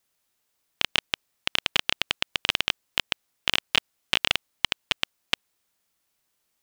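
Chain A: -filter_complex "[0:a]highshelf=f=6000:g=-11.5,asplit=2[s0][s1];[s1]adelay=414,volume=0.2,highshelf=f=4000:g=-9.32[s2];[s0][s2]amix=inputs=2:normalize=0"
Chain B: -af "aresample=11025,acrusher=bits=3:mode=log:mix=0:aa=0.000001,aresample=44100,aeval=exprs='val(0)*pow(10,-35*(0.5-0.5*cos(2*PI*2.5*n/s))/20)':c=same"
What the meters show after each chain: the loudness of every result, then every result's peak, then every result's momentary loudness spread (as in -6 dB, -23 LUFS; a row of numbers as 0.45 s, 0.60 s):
-29.0 LUFS, -34.5 LUFS; -3.5 dBFS, -1.5 dBFS; 6 LU, 17 LU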